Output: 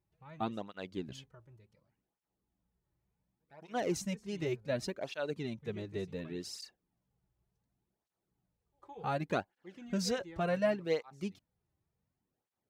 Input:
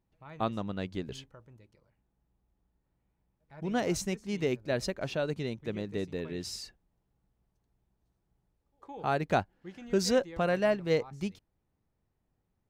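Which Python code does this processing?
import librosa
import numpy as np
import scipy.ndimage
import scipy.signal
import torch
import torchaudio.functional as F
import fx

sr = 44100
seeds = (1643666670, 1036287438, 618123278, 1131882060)

y = fx.flanger_cancel(x, sr, hz=0.68, depth_ms=4.5)
y = F.gain(torch.from_numpy(y), -2.0).numpy()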